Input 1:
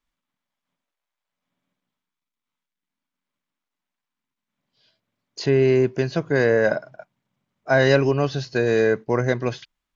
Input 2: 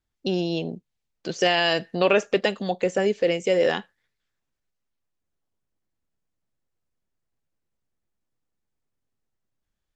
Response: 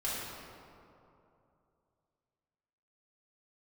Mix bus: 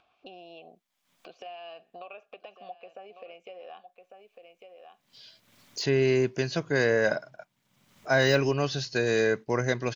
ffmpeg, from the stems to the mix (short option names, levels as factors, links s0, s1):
-filter_complex "[0:a]deesser=0.75,adelay=400,volume=0.473,afade=t=in:st=4.92:d=0.61:silence=0.237137[s0];[1:a]lowpass=3300,acompressor=threshold=0.0794:ratio=6,asplit=3[s1][s2][s3];[s1]bandpass=f=730:t=q:w=8,volume=1[s4];[s2]bandpass=f=1090:t=q:w=8,volume=0.501[s5];[s3]bandpass=f=2440:t=q:w=8,volume=0.355[s6];[s4][s5][s6]amix=inputs=3:normalize=0,volume=0.266,asplit=2[s7][s8];[s8]volume=0.168,aecho=0:1:1150:1[s9];[s0][s7][s9]amix=inputs=3:normalize=0,highshelf=f=2300:g=11,acompressor=mode=upward:threshold=0.0126:ratio=2.5"